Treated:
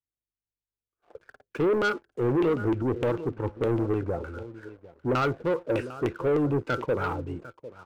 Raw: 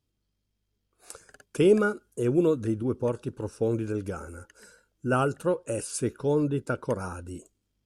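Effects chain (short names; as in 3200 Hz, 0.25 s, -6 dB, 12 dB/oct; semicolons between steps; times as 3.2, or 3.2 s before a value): resonator 170 Hz, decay 0.26 s, harmonics all, mix 40%; LFO low-pass saw down 3.3 Hz 350–2800 Hz; limiter -21.5 dBFS, peak gain reduction 11 dB; echo 0.751 s -15.5 dB; sample leveller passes 2; bell 200 Hz -7.5 dB 0.31 oct; three-band expander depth 40%; gain +1.5 dB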